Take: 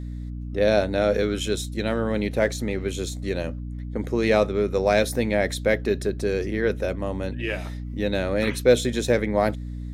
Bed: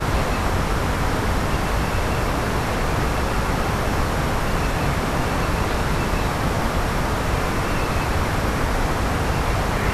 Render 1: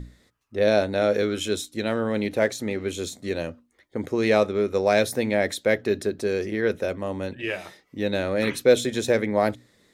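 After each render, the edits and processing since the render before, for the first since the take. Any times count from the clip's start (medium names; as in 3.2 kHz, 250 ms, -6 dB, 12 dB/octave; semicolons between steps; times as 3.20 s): hum notches 60/120/180/240/300 Hz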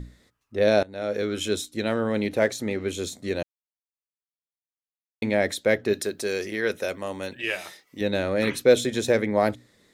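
0.83–1.45 s: fade in, from -21 dB; 3.43–5.22 s: mute; 5.93–8.01 s: tilt EQ +2.5 dB/octave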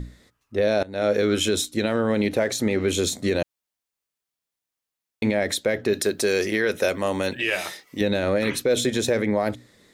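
in parallel at +0.5 dB: gain riding 0.5 s; on the sum: peak limiter -12 dBFS, peak gain reduction 10.5 dB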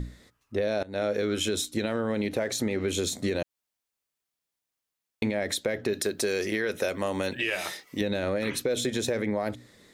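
compression 3:1, threshold -26 dBFS, peak gain reduction 7.5 dB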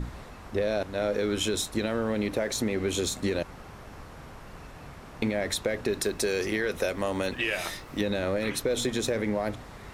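add bed -23.5 dB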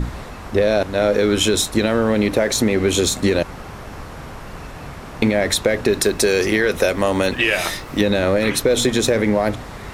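trim +11 dB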